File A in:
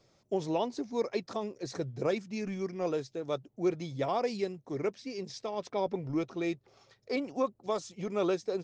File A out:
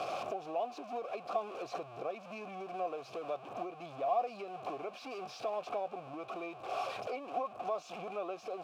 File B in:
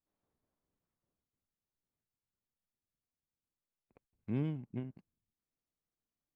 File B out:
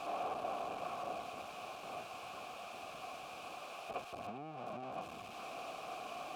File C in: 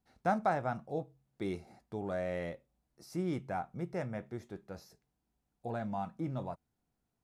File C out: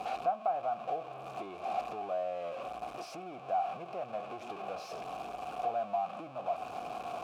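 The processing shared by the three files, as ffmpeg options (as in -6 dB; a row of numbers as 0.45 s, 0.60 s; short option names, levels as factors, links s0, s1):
-filter_complex "[0:a]aeval=exprs='val(0)+0.5*0.0224*sgn(val(0))':c=same,acompressor=threshold=0.0112:ratio=6,asplit=3[s0][s1][s2];[s0]bandpass=f=730:t=q:w=8,volume=1[s3];[s1]bandpass=f=1090:t=q:w=8,volume=0.501[s4];[s2]bandpass=f=2440:t=q:w=8,volume=0.355[s5];[s3][s4][s5]amix=inputs=3:normalize=0,volume=5.31"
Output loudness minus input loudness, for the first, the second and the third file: -5.5 LU, -5.5 LU, +0.5 LU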